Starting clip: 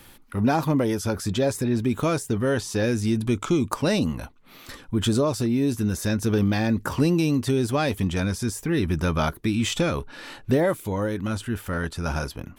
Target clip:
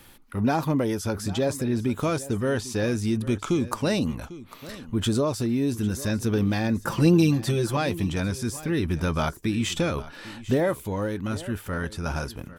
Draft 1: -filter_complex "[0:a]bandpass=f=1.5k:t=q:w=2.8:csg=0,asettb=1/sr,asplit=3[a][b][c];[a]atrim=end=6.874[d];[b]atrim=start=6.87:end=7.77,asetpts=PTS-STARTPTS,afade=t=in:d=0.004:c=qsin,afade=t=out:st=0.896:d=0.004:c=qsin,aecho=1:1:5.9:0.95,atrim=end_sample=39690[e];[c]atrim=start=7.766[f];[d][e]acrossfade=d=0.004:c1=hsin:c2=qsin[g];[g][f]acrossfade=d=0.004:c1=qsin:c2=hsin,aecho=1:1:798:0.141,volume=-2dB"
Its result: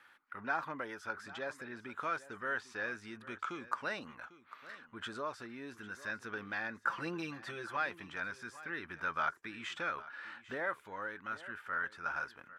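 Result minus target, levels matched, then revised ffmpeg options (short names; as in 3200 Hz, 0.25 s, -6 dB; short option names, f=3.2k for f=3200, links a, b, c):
2000 Hz band +12.0 dB
-filter_complex "[0:a]asettb=1/sr,asplit=3[a][b][c];[a]atrim=end=6.874[d];[b]atrim=start=6.87:end=7.77,asetpts=PTS-STARTPTS,afade=t=in:d=0.004:c=qsin,afade=t=out:st=0.896:d=0.004:c=qsin,aecho=1:1:5.9:0.95,atrim=end_sample=39690[e];[c]atrim=start=7.766[f];[d][e]acrossfade=d=0.004:c1=hsin:c2=qsin[g];[g][f]acrossfade=d=0.004:c1=qsin:c2=hsin,aecho=1:1:798:0.141,volume=-2dB"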